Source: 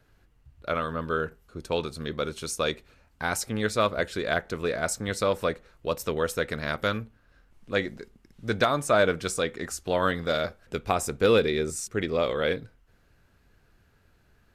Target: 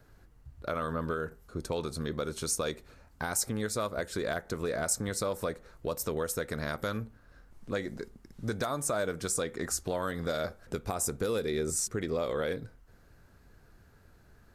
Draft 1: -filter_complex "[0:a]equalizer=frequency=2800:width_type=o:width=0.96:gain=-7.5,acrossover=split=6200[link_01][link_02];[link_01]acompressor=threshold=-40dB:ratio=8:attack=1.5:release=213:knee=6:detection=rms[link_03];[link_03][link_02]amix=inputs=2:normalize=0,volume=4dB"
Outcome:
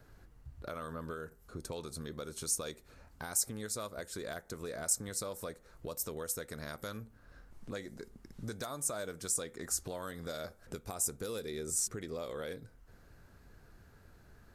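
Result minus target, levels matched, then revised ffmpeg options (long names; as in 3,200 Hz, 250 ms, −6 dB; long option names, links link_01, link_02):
downward compressor: peak gain reduction +9 dB
-filter_complex "[0:a]equalizer=frequency=2800:width_type=o:width=0.96:gain=-7.5,acrossover=split=6200[link_01][link_02];[link_01]acompressor=threshold=-29.5dB:ratio=8:attack=1.5:release=213:knee=6:detection=rms[link_03];[link_03][link_02]amix=inputs=2:normalize=0,volume=4dB"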